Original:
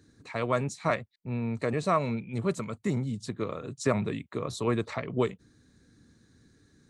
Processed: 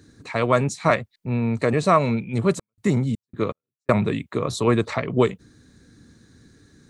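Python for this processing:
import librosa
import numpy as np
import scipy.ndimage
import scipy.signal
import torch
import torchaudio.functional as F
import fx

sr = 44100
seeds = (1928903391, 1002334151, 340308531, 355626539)

y = fx.step_gate(x, sr, bpm=81, pattern='x.x..x.x', floor_db=-60.0, edge_ms=4.5, at=(2.56, 3.91), fade=0.02)
y = y * 10.0 ** (8.5 / 20.0)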